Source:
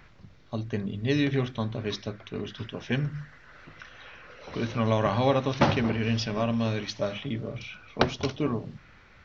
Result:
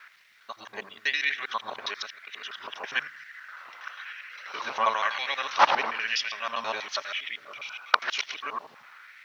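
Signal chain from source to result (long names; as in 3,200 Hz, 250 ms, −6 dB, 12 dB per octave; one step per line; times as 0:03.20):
reversed piece by piece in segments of 81 ms
auto-filter high-pass sine 1 Hz 890–2,000 Hz
bit-depth reduction 12 bits, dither none
level +3 dB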